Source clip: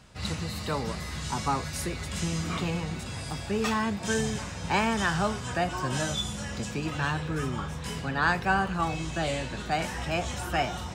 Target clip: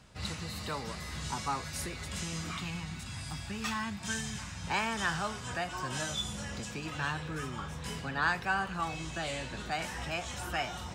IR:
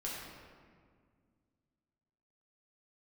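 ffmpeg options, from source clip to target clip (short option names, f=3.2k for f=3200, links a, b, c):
-filter_complex "[0:a]asettb=1/sr,asplit=3[a][b][c];[a]atrim=end=2.514[d];[b]atrim=start=2.51:end=4.67,asetpts=PTS-STARTPTS,afade=t=in:d=0.004:c=qsin,afade=t=out:st=2.156:d=0.004:c=qsin,equalizer=f=470:w=1.3:g=-14[e];[c]atrim=start=4.666[f];[d][e]acrossfade=d=0.004:c1=hsin:c2=qsin[g];[g][f]acrossfade=d=0.004:c1=qsin:c2=hsin,acrossover=split=860[h][i];[h]alimiter=level_in=4dB:limit=-24dB:level=0:latency=1:release=362,volume=-4dB[j];[j][i]amix=inputs=2:normalize=0,volume=-3.5dB"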